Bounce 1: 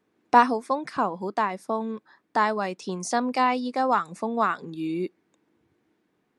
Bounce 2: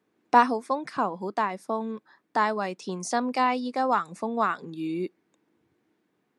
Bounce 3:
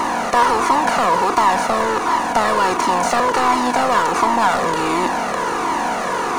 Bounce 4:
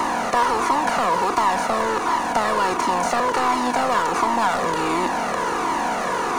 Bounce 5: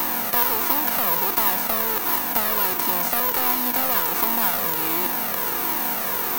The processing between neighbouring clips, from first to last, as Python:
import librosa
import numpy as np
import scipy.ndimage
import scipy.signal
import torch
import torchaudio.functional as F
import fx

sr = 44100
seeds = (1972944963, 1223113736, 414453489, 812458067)

y1 = scipy.signal.sosfilt(scipy.signal.butter(2, 89.0, 'highpass', fs=sr, output='sos'), x)
y1 = y1 * librosa.db_to_amplitude(-1.5)
y2 = fx.bin_compress(y1, sr, power=0.2)
y2 = fx.power_curve(y2, sr, exponent=0.7)
y2 = fx.comb_cascade(y2, sr, direction='falling', hz=1.4)
y2 = y2 * librosa.db_to_amplitude(2.0)
y3 = fx.band_squash(y2, sr, depth_pct=40)
y3 = y3 * librosa.db_to_amplitude(-4.0)
y4 = fx.envelope_flatten(y3, sr, power=0.6)
y4 = (np.kron(scipy.signal.resample_poly(y4, 1, 3), np.eye(3)[0]) * 3)[:len(y4)]
y4 = y4 * librosa.db_to_amplitude(-6.0)